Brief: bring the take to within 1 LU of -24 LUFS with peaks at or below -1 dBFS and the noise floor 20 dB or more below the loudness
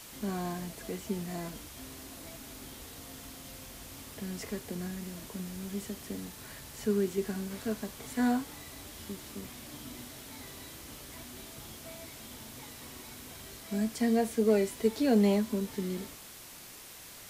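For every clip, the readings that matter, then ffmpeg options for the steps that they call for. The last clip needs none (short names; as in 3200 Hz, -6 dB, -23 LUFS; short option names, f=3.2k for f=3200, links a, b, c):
noise floor -49 dBFS; noise floor target -55 dBFS; loudness -35.0 LUFS; peak -15.0 dBFS; loudness target -24.0 LUFS
-> -af "afftdn=nr=6:nf=-49"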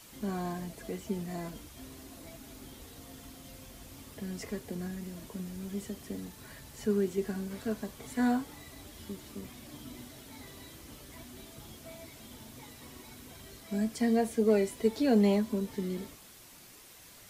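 noise floor -54 dBFS; loudness -33.0 LUFS; peak -15.0 dBFS; loudness target -24.0 LUFS
-> -af "volume=9dB"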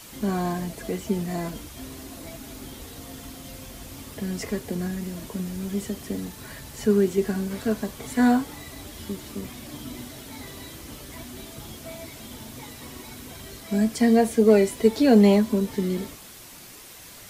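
loudness -24.0 LUFS; peak -6.0 dBFS; noise floor -45 dBFS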